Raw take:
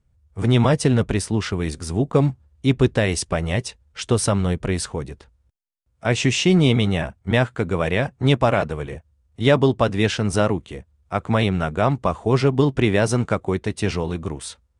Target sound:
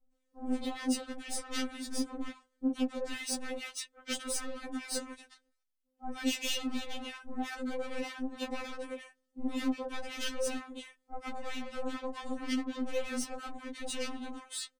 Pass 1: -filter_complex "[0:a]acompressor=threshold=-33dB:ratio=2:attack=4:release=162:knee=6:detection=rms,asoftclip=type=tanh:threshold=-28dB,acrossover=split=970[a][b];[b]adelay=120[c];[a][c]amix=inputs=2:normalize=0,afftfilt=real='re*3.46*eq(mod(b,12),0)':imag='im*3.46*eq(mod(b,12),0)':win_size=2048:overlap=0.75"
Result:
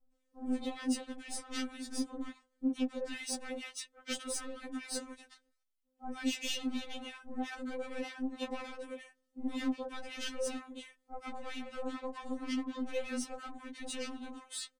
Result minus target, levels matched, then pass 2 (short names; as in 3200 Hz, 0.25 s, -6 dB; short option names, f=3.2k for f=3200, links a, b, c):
compressor: peak gain reduction +5.5 dB
-filter_complex "[0:a]acompressor=threshold=-22dB:ratio=2:attack=4:release=162:knee=6:detection=rms,asoftclip=type=tanh:threshold=-28dB,acrossover=split=970[a][b];[b]adelay=120[c];[a][c]amix=inputs=2:normalize=0,afftfilt=real='re*3.46*eq(mod(b,12),0)':imag='im*3.46*eq(mod(b,12),0)':win_size=2048:overlap=0.75"